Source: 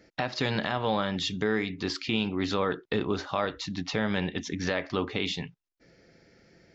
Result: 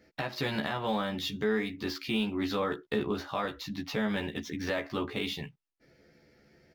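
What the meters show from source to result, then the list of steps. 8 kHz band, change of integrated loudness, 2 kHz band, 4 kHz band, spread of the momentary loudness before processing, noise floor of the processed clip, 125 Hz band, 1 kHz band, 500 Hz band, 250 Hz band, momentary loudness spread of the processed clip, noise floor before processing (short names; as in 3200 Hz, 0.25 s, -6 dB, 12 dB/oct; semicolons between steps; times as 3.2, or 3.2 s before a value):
n/a, -3.0 dB, -3.0 dB, -4.0 dB, 4 LU, -75 dBFS, -5.0 dB, -3.5 dB, -2.5 dB, -2.0 dB, 6 LU, -74 dBFS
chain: median filter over 5 samples; doubler 14 ms -2.5 dB; gain -5 dB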